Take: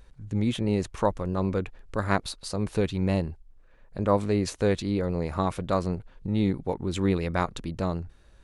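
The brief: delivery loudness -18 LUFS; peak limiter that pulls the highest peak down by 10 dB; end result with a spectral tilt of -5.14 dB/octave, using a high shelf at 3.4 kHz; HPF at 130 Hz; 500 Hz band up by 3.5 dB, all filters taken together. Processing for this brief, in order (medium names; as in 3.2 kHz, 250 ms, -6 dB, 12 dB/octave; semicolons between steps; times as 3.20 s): high-pass 130 Hz; peaking EQ 500 Hz +4 dB; treble shelf 3.4 kHz +8 dB; trim +11.5 dB; peak limiter -4 dBFS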